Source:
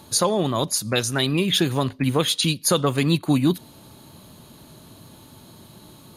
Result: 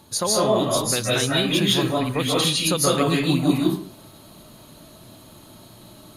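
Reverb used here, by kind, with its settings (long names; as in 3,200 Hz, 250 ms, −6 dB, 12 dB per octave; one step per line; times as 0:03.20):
comb and all-pass reverb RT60 0.49 s, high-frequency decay 0.65×, pre-delay 115 ms, DRR −5.5 dB
level −4.5 dB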